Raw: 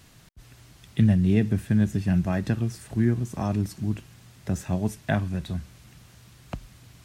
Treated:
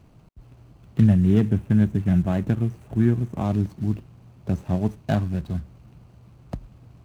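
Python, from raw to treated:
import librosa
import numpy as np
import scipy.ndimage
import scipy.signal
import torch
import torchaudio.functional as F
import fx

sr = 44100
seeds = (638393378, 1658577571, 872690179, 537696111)

y = scipy.ndimage.median_filter(x, 25, mode='constant')
y = fx.peak_eq(y, sr, hz=4600.0, db=-6.0, octaves=0.64, at=(1.07, 3.45))
y = F.gain(torch.from_numpy(y), 3.0).numpy()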